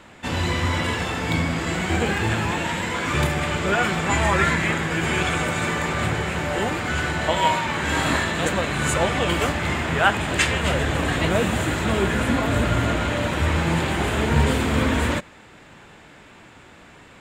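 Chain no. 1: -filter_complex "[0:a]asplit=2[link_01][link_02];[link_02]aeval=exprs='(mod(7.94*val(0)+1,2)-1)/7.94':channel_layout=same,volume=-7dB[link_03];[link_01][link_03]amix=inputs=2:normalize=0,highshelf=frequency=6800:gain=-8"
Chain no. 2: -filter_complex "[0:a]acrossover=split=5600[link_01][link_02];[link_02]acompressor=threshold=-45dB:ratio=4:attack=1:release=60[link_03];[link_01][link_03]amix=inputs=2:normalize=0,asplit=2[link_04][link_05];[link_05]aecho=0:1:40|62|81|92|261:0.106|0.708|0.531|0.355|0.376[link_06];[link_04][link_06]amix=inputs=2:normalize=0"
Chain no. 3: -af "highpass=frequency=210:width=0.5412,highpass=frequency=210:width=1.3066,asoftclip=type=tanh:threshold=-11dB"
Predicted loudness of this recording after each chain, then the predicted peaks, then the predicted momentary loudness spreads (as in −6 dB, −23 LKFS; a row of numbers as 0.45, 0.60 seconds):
−21.0, −19.0, −24.0 LKFS; −4.0, −3.0, −11.0 dBFS; 3, 4, 4 LU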